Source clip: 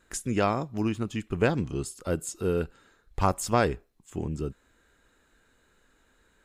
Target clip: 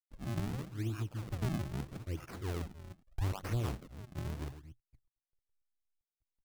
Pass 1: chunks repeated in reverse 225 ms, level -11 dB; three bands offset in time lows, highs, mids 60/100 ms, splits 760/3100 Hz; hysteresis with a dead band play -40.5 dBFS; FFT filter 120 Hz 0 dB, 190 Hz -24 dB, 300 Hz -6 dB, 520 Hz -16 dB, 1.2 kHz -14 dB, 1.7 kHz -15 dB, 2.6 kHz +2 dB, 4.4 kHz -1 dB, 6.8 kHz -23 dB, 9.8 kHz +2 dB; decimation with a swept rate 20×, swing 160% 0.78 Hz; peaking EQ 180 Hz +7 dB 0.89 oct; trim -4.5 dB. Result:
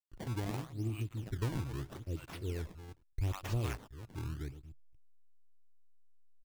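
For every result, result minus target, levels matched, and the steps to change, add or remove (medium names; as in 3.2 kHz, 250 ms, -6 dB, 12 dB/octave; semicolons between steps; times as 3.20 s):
hysteresis with a dead band: distortion +8 dB; decimation with a swept rate: distortion -5 dB
change: hysteresis with a dead band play -48.5 dBFS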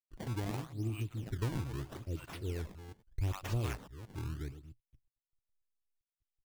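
decimation with a swept rate: distortion -5 dB
change: decimation with a swept rate 53×, swing 160% 0.78 Hz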